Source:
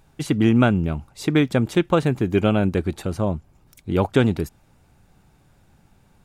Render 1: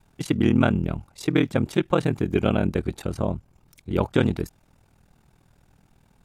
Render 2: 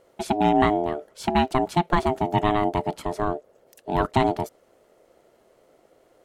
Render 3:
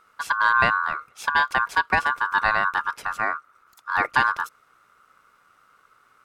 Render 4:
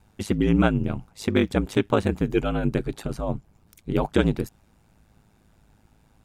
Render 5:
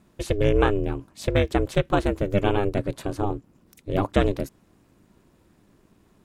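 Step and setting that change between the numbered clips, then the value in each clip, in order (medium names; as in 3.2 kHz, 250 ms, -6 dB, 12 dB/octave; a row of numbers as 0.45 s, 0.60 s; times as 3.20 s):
ring modulator, frequency: 20 Hz, 520 Hz, 1.3 kHz, 53 Hz, 200 Hz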